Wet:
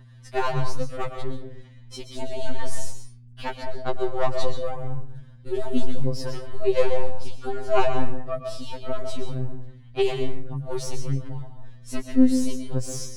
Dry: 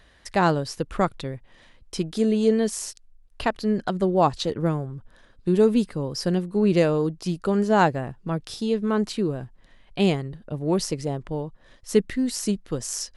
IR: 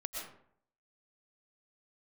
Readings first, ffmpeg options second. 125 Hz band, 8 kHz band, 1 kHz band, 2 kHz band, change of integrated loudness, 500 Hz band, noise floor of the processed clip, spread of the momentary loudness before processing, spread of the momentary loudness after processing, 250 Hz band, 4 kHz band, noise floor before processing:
−3.5 dB, −5.0 dB, −4.5 dB, −5.0 dB, −4.5 dB, −4.0 dB, −47 dBFS, 12 LU, 16 LU, −5.0 dB, −4.0 dB, −56 dBFS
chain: -filter_complex "[0:a]aeval=exprs='(tanh(3.98*val(0)+0.7)-tanh(0.7))/3.98':channel_layout=same,aphaser=in_gain=1:out_gain=1:delay=3.9:decay=0.62:speed=1.8:type=sinusoidal,aeval=exprs='val(0)+0.00891*(sin(2*PI*60*n/s)+sin(2*PI*2*60*n/s)/2+sin(2*PI*3*60*n/s)/3+sin(2*PI*4*60*n/s)/4+sin(2*PI*5*60*n/s)/5)':channel_layout=same,asplit=2[link_01][link_02];[1:a]atrim=start_sample=2205,afade=type=out:start_time=0.43:duration=0.01,atrim=end_sample=19404,asetrate=41013,aresample=44100[link_03];[link_02][link_03]afir=irnorm=-1:irlink=0,volume=0.5dB[link_04];[link_01][link_04]amix=inputs=2:normalize=0,afftfilt=real='re*2.45*eq(mod(b,6),0)':imag='im*2.45*eq(mod(b,6),0)':win_size=2048:overlap=0.75,volume=-7dB"

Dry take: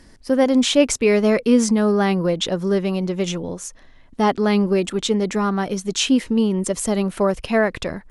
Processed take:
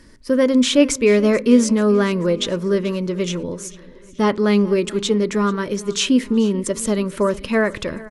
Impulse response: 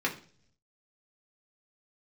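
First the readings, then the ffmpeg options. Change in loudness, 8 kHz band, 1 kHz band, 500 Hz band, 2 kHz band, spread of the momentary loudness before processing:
+1.0 dB, 0.0 dB, −2.5 dB, +1.5 dB, +1.0 dB, 8 LU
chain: -filter_complex "[0:a]asuperstop=centerf=750:order=4:qfactor=3.5,aecho=1:1:436|872|1308|1744:0.1|0.05|0.025|0.0125,asplit=2[link_01][link_02];[1:a]atrim=start_sample=2205,lowpass=frequency=2000:poles=1[link_03];[link_02][link_03]afir=irnorm=-1:irlink=0,volume=-19dB[link_04];[link_01][link_04]amix=inputs=2:normalize=0"

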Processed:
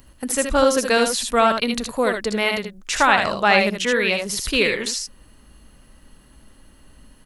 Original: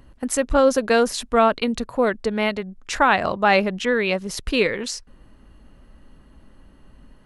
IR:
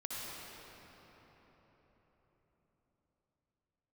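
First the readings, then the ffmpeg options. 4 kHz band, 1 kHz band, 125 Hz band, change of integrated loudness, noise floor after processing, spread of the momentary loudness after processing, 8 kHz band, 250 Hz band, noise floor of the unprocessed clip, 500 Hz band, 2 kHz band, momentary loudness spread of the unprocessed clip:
+5.5 dB, +1.0 dB, −1.0 dB, +1.5 dB, −51 dBFS, 9 LU, +5.5 dB, −1.0 dB, −52 dBFS, −0.5 dB, +3.5 dB, 9 LU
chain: -filter_complex "[0:a]aecho=1:1:63|77:0.237|0.473,acrossover=split=3600[link_01][link_02];[link_02]acompressor=threshold=-35dB:ratio=4:attack=1:release=60[link_03];[link_01][link_03]amix=inputs=2:normalize=0,crystalizer=i=4.5:c=0,volume=-2dB"

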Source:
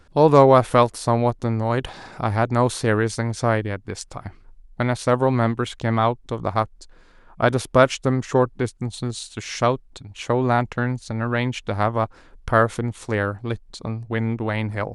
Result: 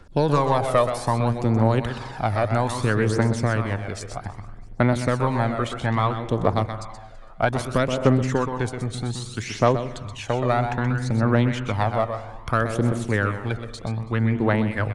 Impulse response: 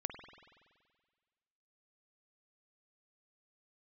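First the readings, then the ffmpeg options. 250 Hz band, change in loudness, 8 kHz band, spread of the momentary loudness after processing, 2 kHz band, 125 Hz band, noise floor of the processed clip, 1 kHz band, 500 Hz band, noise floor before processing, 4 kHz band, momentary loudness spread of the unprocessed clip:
0.0 dB, −1.5 dB, −2.5 dB, 10 LU, −1.0 dB, +1.0 dB, −40 dBFS, −2.5 dB, −3.5 dB, −51 dBFS, −2.0 dB, 13 LU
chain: -filter_complex "[0:a]acrossover=split=91|820|2200[link_01][link_02][link_03][link_04];[link_01]acompressor=threshold=-41dB:ratio=4[link_05];[link_02]acompressor=threshold=-19dB:ratio=4[link_06];[link_03]acompressor=threshold=-26dB:ratio=4[link_07];[link_04]acompressor=threshold=-37dB:ratio=4[link_08];[link_05][link_06][link_07][link_08]amix=inputs=4:normalize=0,aeval=exprs='0.708*(cos(1*acos(clip(val(0)/0.708,-1,1)))-cos(1*PI/2))+0.0708*(cos(4*acos(clip(val(0)/0.708,-1,1)))-cos(4*PI/2))+0.0224*(cos(6*acos(clip(val(0)/0.708,-1,1)))-cos(6*PI/2))':channel_layout=same,aecho=1:1:329|658|987:0.0708|0.0311|0.0137,asplit=2[link_09][link_10];[1:a]atrim=start_sample=2205,afade=type=out:start_time=0.42:duration=0.01,atrim=end_sample=18963,adelay=126[link_11];[link_10][link_11]afir=irnorm=-1:irlink=0,volume=-6dB[link_12];[link_09][link_12]amix=inputs=2:normalize=0,aphaser=in_gain=1:out_gain=1:delay=1.7:decay=0.48:speed=0.62:type=triangular"

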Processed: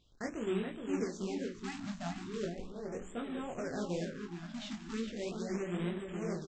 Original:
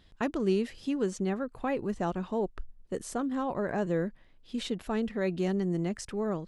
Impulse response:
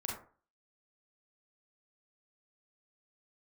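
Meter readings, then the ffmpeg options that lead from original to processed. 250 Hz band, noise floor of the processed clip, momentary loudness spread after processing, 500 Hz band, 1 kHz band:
−7.0 dB, −50 dBFS, 7 LU, −7.5 dB, −9.5 dB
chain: -filter_complex "[0:a]equalizer=frequency=950:width_type=o:width=0.43:gain=-11,bandreject=frequency=45.54:width_type=h:width=4,bandreject=frequency=91.08:width_type=h:width=4,bandreject=frequency=136.62:width_type=h:width=4,bandreject=frequency=182.16:width_type=h:width=4,bandreject=frequency=227.7:width_type=h:width=4,bandreject=frequency=273.24:width_type=h:width=4,bandreject=frequency=318.78:width_type=h:width=4,bandreject=frequency=364.32:width_type=h:width=4,bandreject=frequency=409.86:width_type=h:width=4,flanger=delay=8.2:depth=9.8:regen=85:speed=0.61:shape=sinusoidal,aresample=16000,acrusher=bits=2:mode=log:mix=0:aa=0.000001,aresample=44100,flanger=delay=17.5:depth=6.3:speed=2.2,asplit=2[link_01][link_02];[link_02]adelay=421,lowpass=frequency=2900:poles=1,volume=-5dB,asplit=2[link_03][link_04];[link_04]adelay=421,lowpass=frequency=2900:poles=1,volume=0.48,asplit=2[link_05][link_06];[link_06]adelay=421,lowpass=frequency=2900:poles=1,volume=0.48,asplit=2[link_07][link_08];[link_08]adelay=421,lowpass=frequency=2900:poles=1,volume=0.48,asplit=2[link_09][link_10];[link_10]adelay=421,lowpass=frequency=2900:poles=1,volume=0.48,asplit=2[link_11][link_12];[link_12]adelay=421,lowpass=frequency=2900:poles=1,volume=0.48[link_13];[link_01][link_03][link_05][link_07][link_09][link_11][link_13]amix=inputs=7:normalize=0,afftfilt=real='re*(1-between(b*sr/1024,410*pow(5600/410,0.5+0.5*sin(2*PI*0.38*pts/sr))/1.41,410*pow(5600/410,0.5+0.5*sin(2*PI*0.38*pts/sr))*1.41))':imag='im*(1-between(b*sr/1024,410*pow(5600/410,0.5+0.5*sin(2*PI*0.38*pts/sr))/1.41,410*pow(5600/410,0.5+0.5*sin(2*PI*0.38*pts/sr))*1.41))':win_size=1024:overlap=0.75"

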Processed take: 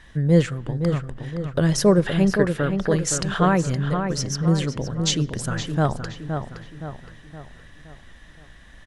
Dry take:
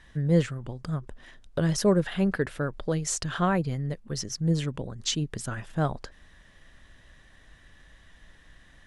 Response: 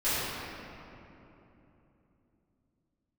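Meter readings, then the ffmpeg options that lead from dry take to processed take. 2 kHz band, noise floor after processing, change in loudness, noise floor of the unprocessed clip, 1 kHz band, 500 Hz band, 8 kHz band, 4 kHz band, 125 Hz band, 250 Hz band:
+6.5 dB, −48 dBFS, +6.0 dB, −56 dBFS, +6.5 dB, +7.0 dB, +6.0 dB, +6.0 dB, +6.5 dB, +6.5 dB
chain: -filter_complex "[0:a]asplit=2[link_01][link_02];[link_02]adelay=518,lowpass=frequency=3000:poles=1,volume=-6.5dB,asplit=2[link_03][link_04];[link_04]adelay=518,lowpass=frequency=3000:poles=1,volume=0.47,asplit=2[link_05][link_06];[link_06]adelay=518,lowpass=frequency=3000:poles=1,volume=0.47,asplit=2[link_07][link_08];[link_08]adelay=518,lowpass=frequency=3000:poles=1,volume=0.47,asplit=2[link_09][link_10];[link_10]adelay=518,lowpass=frequency=3000:poles=1,volume=0.47,asplit=2[link_11][link_12];[link_12]adelay=518,lowpass=frequency=3000:poles=1,volume=0.47[link_13];[link_01][link_03][link_05][link_07][link_09][link_11][link_13]amix=inputs=7:normalize=0,asplit=2[link_14][link_15];[1:a]atrim=start_sample=2205,afade=type=out:start_time=0.33:duration=0.01,atrim=end_sample=14994[link_16];[link_15][link_16]afir=irnorm=-1:irlink=0,volume=-36dB[link_17];[link_14][link_17]amix=inputs=2:normalize=0,volume=5.5dB"

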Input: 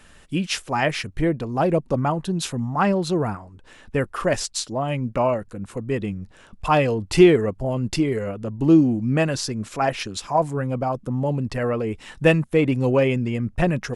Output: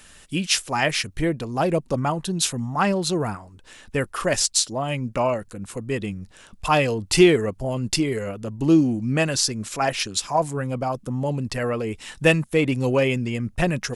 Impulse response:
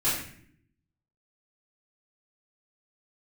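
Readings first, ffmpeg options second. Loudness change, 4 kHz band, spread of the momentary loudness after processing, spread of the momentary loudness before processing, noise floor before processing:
−0.5 dB, +5.5 dB, 10 LU, 11 LU, −50 dBFS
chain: -af "highshelf=frequency=2900:gain=11.5,volume=-2dB"

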